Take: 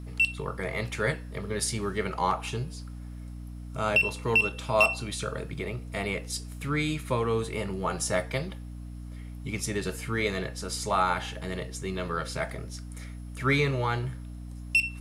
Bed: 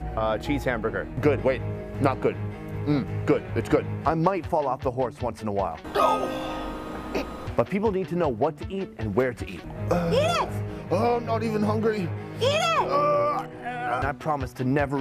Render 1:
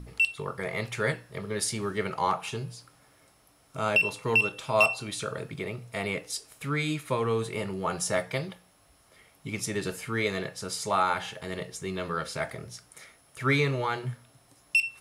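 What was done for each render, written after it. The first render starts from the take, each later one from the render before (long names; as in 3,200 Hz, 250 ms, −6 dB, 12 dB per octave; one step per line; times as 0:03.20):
hum removal 60 Hz, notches 5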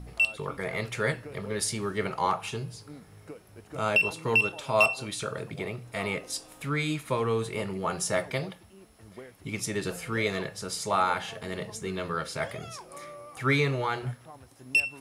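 mix in bed −22.5 dB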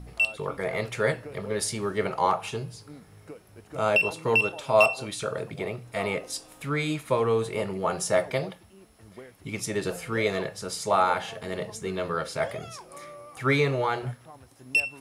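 dynamic equaliser 600 Hz, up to +6 dB, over −42 dBFS, Q 1.1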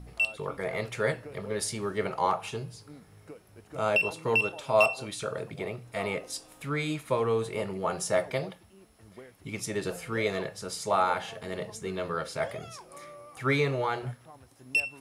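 level −3 dB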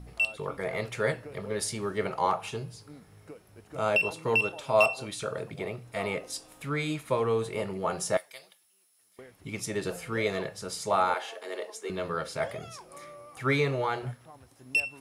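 0:08.17–0:09.19: first difference
0:11.14–0:11.90: Butterworth high-pass 310 Hz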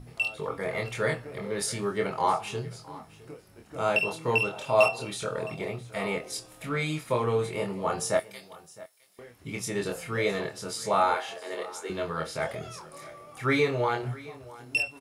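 double-tracking delay 25 ms −3.5 dB
single-tap delay 663 ms −19.5 dB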